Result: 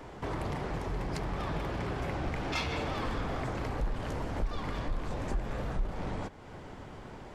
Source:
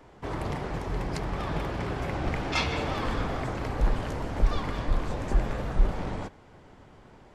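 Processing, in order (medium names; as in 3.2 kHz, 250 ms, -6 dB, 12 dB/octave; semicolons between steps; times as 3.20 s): in parallel at -7 dB: overload inside the chain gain 29 dB; on the sum: compression 2:1, threshold -43 dBFS, peak gain reduction 15.5 dB; trim +3.5 dB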